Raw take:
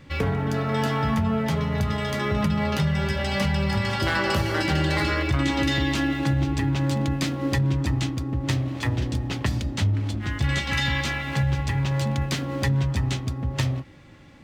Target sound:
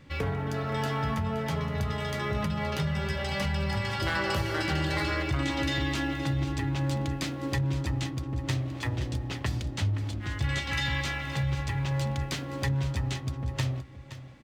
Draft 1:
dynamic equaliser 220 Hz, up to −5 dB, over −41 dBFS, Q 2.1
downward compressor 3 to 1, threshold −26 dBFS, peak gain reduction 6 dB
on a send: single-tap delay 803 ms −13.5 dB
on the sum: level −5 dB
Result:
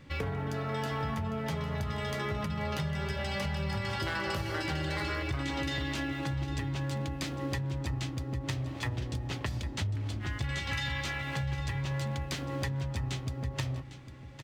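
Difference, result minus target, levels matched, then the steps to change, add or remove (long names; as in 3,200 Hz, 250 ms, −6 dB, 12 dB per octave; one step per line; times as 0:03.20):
echo 282 ms late; downward compressor: peak gain reduction +6 dB
change: single-tap delay 521 ms −13.5 dB
remove: downward compressor 3 to 1, threshold −26 dBFS, peak gain reduction 6 dB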